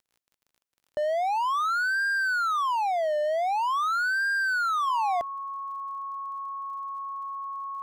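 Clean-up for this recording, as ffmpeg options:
ffmpeg -i in.wav -af "adeclick=threshold=4,bandreject=frequency=1100:width=30" out.wav

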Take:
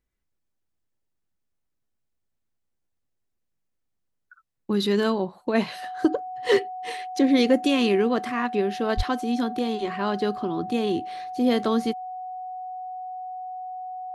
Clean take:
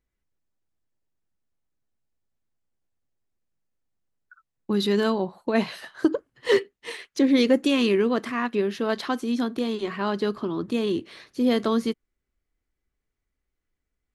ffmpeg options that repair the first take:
ffmpeg -i in.wav -filter_complex "[0:a]bandreject=frequency=740:width=30,asplit=3[link_01][link_02][link_03];[link_01]afade=type=out:start_time=8.96:duration=0.02[link_04];[link_02]highpass=frequency=140:width=0.5412,highpass=frequency=140:width=1.3066,afade=type=in:start_time=8.96:duration=0.02,afade=type=out:start_time=9.08:duration=0.02[link_05];[link_03]afade=type=in:start_time=9.08:duration=0.02[link_06];[link_04][link_05][link_06]amix=inputs=3:normalize=0" out.wav

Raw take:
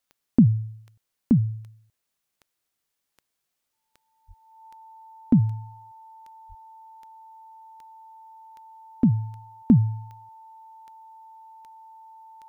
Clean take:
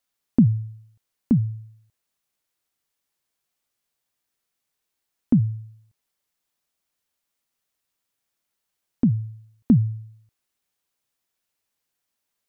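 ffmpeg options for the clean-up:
ffmpeg -i in.wav -filter_complex "[0:a]adeclick=threshold=4,bandreject=frequency=890:width=30,asplit=3[link_01][link_02][link_03];[link_01]afade=type=out:start_time=4.27:duration=0.02[link_04];[link_02]highpass=frequency=140:width=0.5412,highpass=frequency=140:width=1.3066,afade=type=in:start_time=4.27:duration=0.02,afade=type=out:start_time=4.39:duration=0.02[link_05];[link_03]afade=type=in:start_time=4.39:duration=0.02[link_06];[link_04][link_05][link_06]amix=inputs=3:normalize=0,asplit=3[link_07][link_08][link_09];[link_07]afade=type=out:start_time=6.48:duration=0.02[link_10];[link_08]highpass=frequency=140:width=0.5412,highpass=frequency=140:width=1.3066,afade=type=in:start_time=6.48:duration=0.02,afade=type=out:start_time=6.6:duration=0.02[link_11];[link_09]afade=type=in:start_time=6.6:duration=0.02[link_12];[link_10][link_11][link_12]amix=inputs=3:normalize=0" out.wav

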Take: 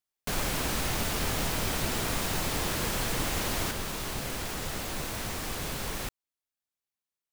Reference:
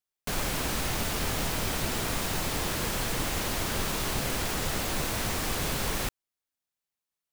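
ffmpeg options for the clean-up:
ffmpeg -i in.wav -af "adeclick=threshold=4,asetnsamples=nb_out_samples=441:pad=0,asendcmd='3.71 volume volume 4.5dB',volume=0dB" out.wav

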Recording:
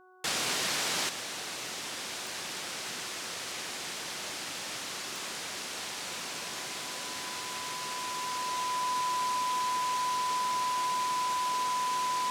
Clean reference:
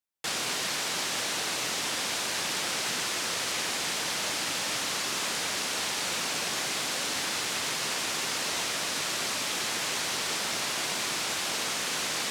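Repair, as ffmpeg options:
ffmpeg -i in.wav -af "adeclick=threshold=4,bandreject=frequency=369.7:width_type=h:width=4,bandreject=frequency=739.4:width_type=h:width=4,bandreject=frequency=1109.1:width_type=h:width=4,bandreject=frequency=1478.8:width_type=h:width=4,bandreject=frequency=1000:width=30,asetnsamples=nb_out_samples=441:pad=0,asendcmd='1.09 volume volume 7.5dB',volume=0dB" out.wav

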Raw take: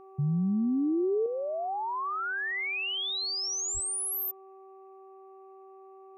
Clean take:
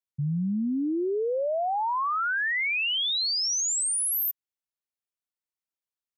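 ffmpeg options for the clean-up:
ffmpeg -i in.wav -filter_complex "[0:a]bandreject=frequency=384.3:width_type=h:width=4,bandreject=frequency=768.6:width_type=h:width=4,bandreject=frequency=1152.9:width_type=h:width=4,asplit=3[link_01][link_02][link_03];[link_01]afade=type=out:start_time=3.73:duration=0.02[link_04];[link_02]highpass=frequency=140:width=0.5412,highpass=frequency=140:width=1.3066,afade=type=in:start_time=3.73:duration=0.02,afade=type=out:start_time=3.85:duration=0.02[link_05];[link_03]afade=type=in:start_time=3.85:duration=0.02[link_06];[link_04][link_05][link_06]amix=inputs=3:normalize=0,agate=range=-21dB:threshold=-43dB,asetnsamples=nb_out_samples=441:pad=0,asendcmd='1.26 volume volume 5.5dB',volume=0dB" out.wav

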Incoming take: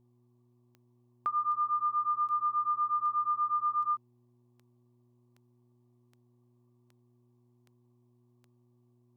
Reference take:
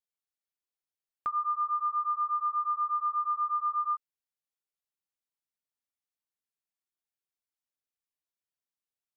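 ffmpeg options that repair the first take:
ffmpeg -i in.wav -af "adeclick=threshold=4,bandreject=frequency=121:width_type=h:width=4,bandreject=frequency=242:width_type=h:width=4,bandreject=frequency=363:width_type=h:width=4,agate=range=-21dB:threshold=-60dB" out.wav

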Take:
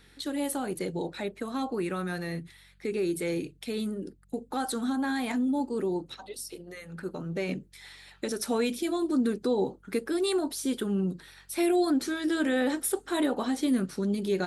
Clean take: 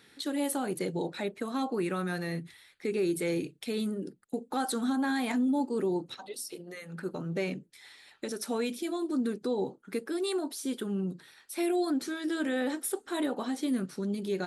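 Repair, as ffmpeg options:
ffmpeg -i in.wav -af "bandreject=frequency=46.8:width_type=h:width=4,bandreject=frequency=93.6:width_type=h:width=4,bandreject=frequency=140.4:width_type=h:width=4,bandreject=frequency=187.2:width_type=h:width=4,asetnsamples=nb_out_samples=441:pad=0,asendcmd='7.49 volume volume -4dB',volume=0dB" out.wav

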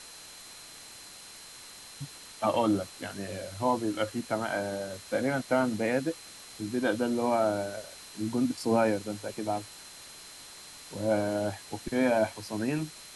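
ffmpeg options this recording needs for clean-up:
ffmpeg -i in.wav -af "adeclick=threshold=4,bandreject=frequency=4100:width=30,afwtdn=0.005" out.wav

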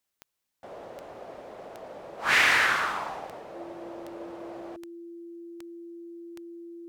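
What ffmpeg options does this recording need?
ffmpeg -i in.wav -af "adeclick=threshold=4,bandreject=frequency=340:width=30" out.wav

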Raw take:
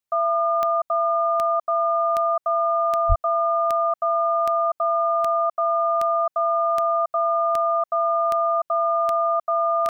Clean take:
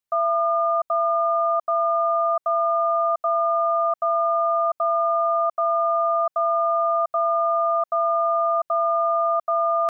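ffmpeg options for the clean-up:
ffmpeg -i in.wav -filter_complex "[0:a]adeclick=threshold=4,asplit=3[link_01][link_02][link_03];[link_01]afade=type=out:start_time=3.08:duration=0.02[link_04];[link_02]highpass=frequency=140:width=0.5412,highpass=frequency=140:width=1.3066,afade=type=in:start_time=3.08:duration=0.02,afade=type=out:start_time=3.2:duration=0.02[link_05];[link_03]afade=type=in:start_time=3.2:duration=0.02[link_06];[link_04][link_05][link_06]amix=inputs=3:normalize=0" out.wav

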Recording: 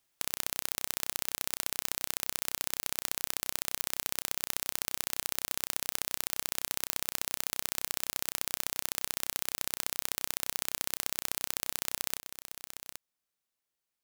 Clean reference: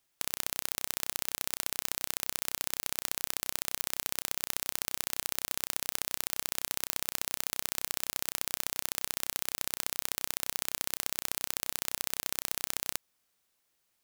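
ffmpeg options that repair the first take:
ffmpeg -i in.wav -af "asetnsamples=nb_out_samples=441:pad=0,asendcmd='12.18 volume volume 11dB',volume=0dB" out.wav

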